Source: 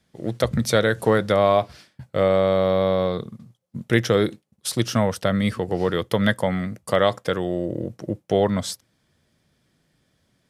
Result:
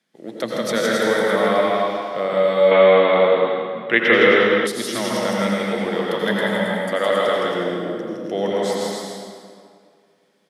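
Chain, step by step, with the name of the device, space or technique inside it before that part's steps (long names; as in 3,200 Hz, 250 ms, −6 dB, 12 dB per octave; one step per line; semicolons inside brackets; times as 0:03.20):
stadium PA (high-pass filter 200 Hz 24 dB per octave; parametric band 2,200 Hz +4 dB 1.6 octaves; loudspeakers that aren't time-aligned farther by 56 metres −3 dB, 93 metres −5 dB; convolution reverb RT60 2.1 s, pre-delay 78 ms, DRR −2.5 dB)
0:02.71–0:04.67: drawn EQ curve 110 Hz 0 dB, 2,800 Hz +11 dB, 5,800 Hz −13 dB
level −5.5 dB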